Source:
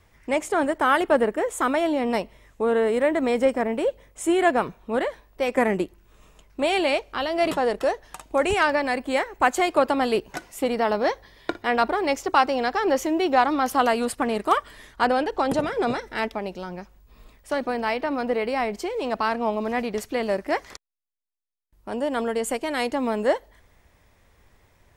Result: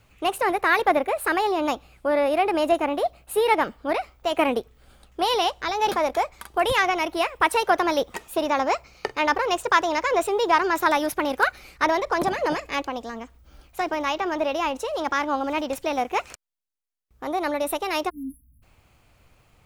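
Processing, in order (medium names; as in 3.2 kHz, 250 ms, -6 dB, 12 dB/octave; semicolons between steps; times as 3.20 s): spectral selection erased 22.98–23.65 s, 230–8000 Hz; wide varispeed 1.27×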